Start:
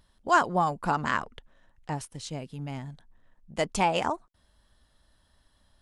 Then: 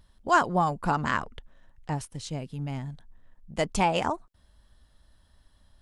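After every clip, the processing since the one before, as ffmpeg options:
ffmpeg -i in.wav -af "lowshelf=frequency=150:gain=7" out.wav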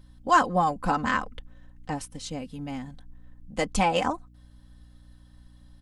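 ffmpeg -i in.wav -af "aecho=1:1:3.9:0.68,aeval=exprs='val(0)+0.00251*(sin(2*PI*60*n/s)+sin(2*PI*2*60*n/s)/2+sin(2*PI*3*60*n/s)/3+sin(2*PI*4*60*n/s)/4+sin(2*PI*5*60*n/s)/5)':channel_layout=same" out.wav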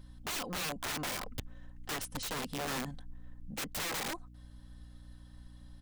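ffmpeg -i in.wav -af "acompressor=threshold=-28dB:ratio=12,aeval=exprs='(mod(37.6*val(0)+1,2)-1)/37.6':channel_layout=same" out.wav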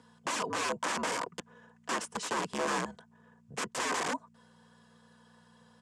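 ffmpeg -i in.wav -af "highpass=frequency=250:width=0.5412,highpass=frequency=250:width=1.3066,equalizer=frequency=360:width_type=q:width=4:gain=5,equalizer=frequency=570:width_type=q:width=4:gain=6,equalizer=frequency=1100:width_type=q:width=4:gain=10,equalizer=frequency=1600:width_type=q:width=4:gain=5,equalizer=frequency=4000:width_type=q:width=4:gain=-5,equalizer=frequency=7400:width_type=q:width=4:gain=4,lowpass=frequency=9000:width=0.5412,lowpass=frequency=9000:width=1.3066,afreqshift=-73,bandreject=frequency=1400:width=19,volume=2dB" out.wav

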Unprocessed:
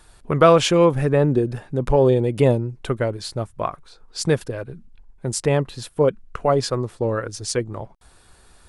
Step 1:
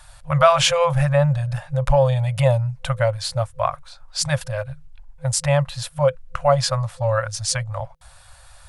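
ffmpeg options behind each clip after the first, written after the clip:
ffmpeg -i in.wav -filter_complex "[0:a]asplit=2[link_01][link_02];[link_02]alimiter=limit=-13.5dB:level=0:latency=1:release=29,volume=0dB[link_03];[link_01][link_03]amix=inputs=2:normalize=0,afftfilt=real='re*(1-between(b*sr/4096,160,510))':imag='im*(1-between(b*sr/4096,160,510))':win_size=4096:overlap=0.75,volume=-1dB" out.wav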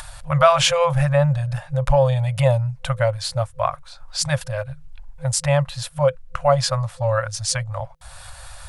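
ffmpeg -i in.wav -af "acompressor=mode=upward:threshold=-28dB:ratio=2.5" out.wav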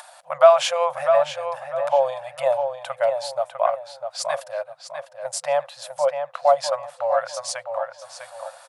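ffmpeg -i in.wav -filter_complex "[0:a]highpass=frequency=670:width_type=q:width=3.6,asplit=2[link_01][link_02];[link_02]adelay=651,lowpass=frequency=3600:poles=1,volume=-6.5dB,asplit=2[link_03][link_04];[link_04]adelay=651,lowpass=frequency=3600:poles=1,volume=0.31,asplit=2[link_05][link_06];[link_06]adelay=651,lowpass=frequency=3600:poles=1,volume=0.31,asplit=2[link_07][link_08];[link_08]adelay=651,lowpass=frequency=3600:poles=1,volume=0.31[link_09];[link_03][link_05][link_07][link_09]amix=inputs=4:normalize=0[link_10];[link_01][link_10]amix=inputs=2:normalize=0,volume=-7dB" out.wav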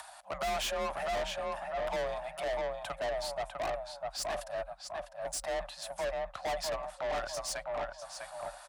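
ffmpeg -i in.wav -af "aeval=exprs='(tanh(25.1*val(0)+0.25)-tanh(0.25))/25.1':channel_layout=same,afreqshift=37,volume=-3.5dB" out.wav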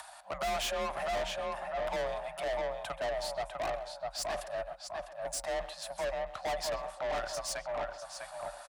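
ffmpeg -i in.wav -filter_complex "[0:a]asplit=2[link_01][link_02];[link_02]adelay=130,highpass=300,lowpass=3400,asoftclip=type=hard:threshold=-32.5dB,volume=-12dB[link_03];[link_01][link_03]amix=inputs=2:normalize=0" out.wav

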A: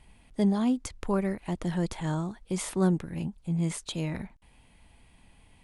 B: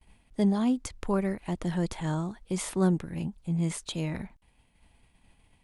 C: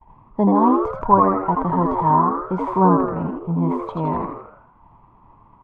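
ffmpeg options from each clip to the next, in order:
ffmpeg -i in.wav -af "agate=range=-33dB:threshold=-51dB:ratio=3:detection=peak" out.wav
ffmpeg -i in.wav -filter_complex "[0:a]lowpass=frequency=960:width_type=q:width=12,asplit=7[link_01][link_02][link_03][link_04][link_05][link_06][link_07];[link_02]adelay=81,afreqshift=92,volume=-3.5dB[link_08];[link_03]adelay=162,afreqshift=184,volume=-10.1dB[link_09];[link_04]adelay=243,afreqshift=276,volume=-16.6dB[link_10];[link_05]adelay=324,afreqshift=368,volume=-23.2dB[link_11];[link_06]adelay=405,afreqshift=460,volume=-29.7dB[link_12];[link_07]adelay=486,afreqshift=552,volume=-36.3dB[link_13];[link_01][link_08][link_09][link_10][link_11][link_12][link_13]amix=inputs=7:normalize=0,volume=6dB" out.wav

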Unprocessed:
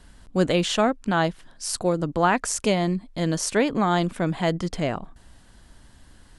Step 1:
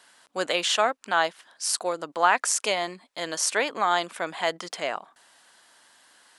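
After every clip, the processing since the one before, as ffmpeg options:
ffmpeg -i in.wav -af "highpass=740,volume=2.5dB" out.wav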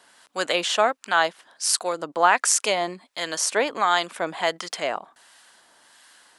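ffmpeg -i in.wav -filter_complex "[0:a]acrossover=split=1000[link_01][link_02];[link_01]aeval=exprs='val(0)*(1-0.5/2+0.5/2*cos(2*PI*1.4*n/s))':channel_layout=same[link_03];[link_02]aeval=exprs='val(0)*(1-0.5/2-0.5/2*cos(2*PI*1.4*n/s))':channel_layout=same[link_04];[link_03][link_04]amix=inputs=2:normalize=0,volume=5dB" out.wav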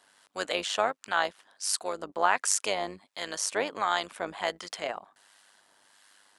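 ffmpeg -i in.wav -af "tremolo=f=100:d=0.667,volume=-4dB" out.wav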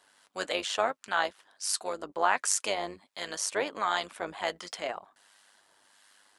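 ffmpeg -i in.wav -af "flanger=delay=1.8:depth=3.5:regen=-61:speed=1.4:shape=triangular,volume=3dB" out.wav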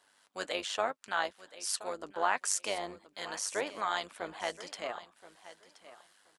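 ffmpeg -i in.wav -af "aecho=1:1:1025|2050:0.158|0.0301,volume=-4dB" out.wav

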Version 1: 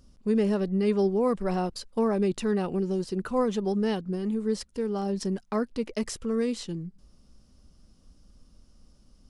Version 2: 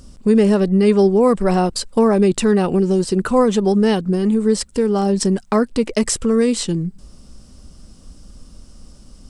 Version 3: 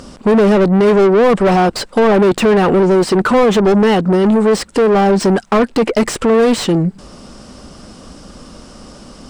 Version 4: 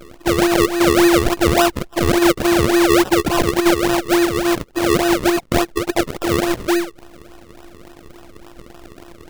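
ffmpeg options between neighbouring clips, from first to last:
ffmpeg -i in.wav -filter_complex "[0:a]equalizer=frequency=8100:width=4.5:gain=10,asplit=2[link_01][link_02];[link_02]acompressor=threshold=-32dB:ratio=6,volume=0.5dB[link_03];[link_01][link_03]amix=inputs=2:normalize=0,volume=8.5dB" out.wav
ffmpeg -i in.wav -filter_complex "[0:a]asplit=2[link_01][link_02];[link_02]highpass=frequency=720:poles=1,volume=28dB,asoftclip=type=tanh:threshold=-3.5dB[link_03];[link_01][link_03]amix=inputs=2:normalize=0,lowpass=frequency=1400:poles=1,volume=-6dB" out.wav
ffmpeg -i in.wav -af "afftfilt=real='hypot(re,im)*cos(PI*b)':imag='0':win_size=512:overlap=0.75,acrusher=samples=39:mix=1:aa=0.000001:lfo=1:lforange=39:lforate=3.5" out.wav

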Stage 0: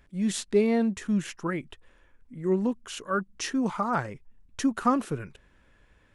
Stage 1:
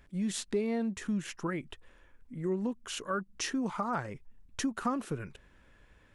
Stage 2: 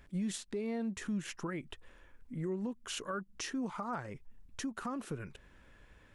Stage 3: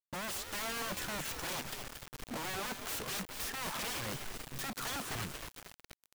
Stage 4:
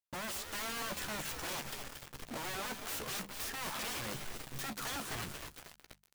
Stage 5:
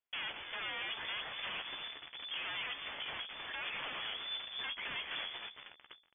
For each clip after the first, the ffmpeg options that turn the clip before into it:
ffmpeg -i in.wav -af "acompressor=threshold=-32dB:ratio=2.5" out.wav
ffmpeg -i in.wav -af "alimiter=level_in=6dB:limit=-24dB:level=0:latency=1:release=366,volume=-6dB,volume=1dB" out.wav
ffmpeg -i in.wav -filter_complex "[0:a]aeval=exprs='(mod(84.1*val(0)+1,2)-1)/84.1':channel_layout=same,asplit=7[link_01][link_02][link_03][link_04][link_05][link_06][link_07];[link_02]adelay=228,afreqshift=-140,volume=-8.5dB[link_08];[link_03]adelay=456,afreqshift=-280,volume=-14.7dB[link_09];[link_04]adelay=684,afreqshift=-420,volume=-20.9dB[link_10];[link_05]adelay=912,afreqshift=-560,volume=-27.1dB[link_11];[link_06]adelay=1140,afreqshift=-700,volume=-33.3dB[link_12];[link_07]adelay=1368,afreqshift=-840,volume=-39.5dB[link_13];[link_01][link_08][link_09][link_10][link_11][link_12][link_13]amix=inputs=7:normalize=0,acrusher=bits=7:mix=0:aa=0.000001,volume=4.5dB" out.wav
ffmpeg -i in.wav -filter_complex "[0:a]bandreject=frequency=50:width_type=h:width=6,bandreject=frequency=100:width_type=h:width=6,bandreject=frequency=150:width_type=h:width=6,bandreject=frequency=200:width_type=h:width=6,asplit=2[link_01][link_02];[link_02]adelay=14,volume=-10dB[link_03];[link_01][link_03]amix=inputs=2:normalize=0,aecho=1:1:237:0.0944,volume=-1.5dB" out.wav
ffmpeg -i in.wav -af "asoftclip=type=tanh:threshold=-39dB,lowpass=frequency=3000:width_type=q:width=0.5098,lowpass=frequency=3000:width_type=q:width=0.6013,lowpass=frequency=3000:width_type=q:width=0.9,lowpass=frequency=3000:width_type=q:width=2.563,afreqshift=-3500,volume=4dB" out.wav

